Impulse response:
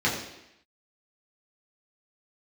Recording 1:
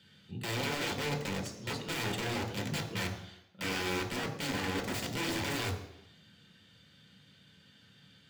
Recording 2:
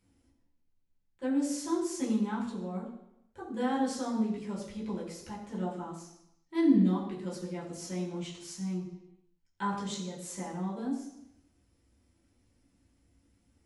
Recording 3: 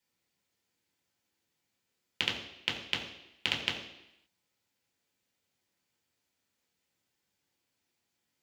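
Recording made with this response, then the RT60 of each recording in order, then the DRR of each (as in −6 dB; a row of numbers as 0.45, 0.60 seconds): 2; 0.85, 0.85, 0.85 seconds; 3.0, −6.0, −1.0 decibels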